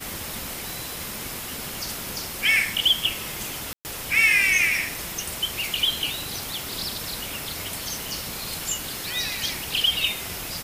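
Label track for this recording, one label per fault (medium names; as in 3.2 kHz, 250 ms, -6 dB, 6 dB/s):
0.700000	0.700000	pop
3.730000	3.850000	dropout 119 ms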